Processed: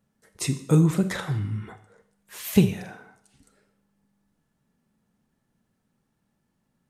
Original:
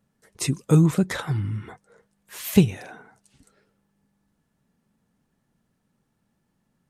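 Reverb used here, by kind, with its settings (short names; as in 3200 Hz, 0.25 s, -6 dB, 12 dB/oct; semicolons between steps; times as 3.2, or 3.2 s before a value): Schroeder reverb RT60 0.62 s, combs from 29 ms, DRR 9.5 dB; gain -2 dB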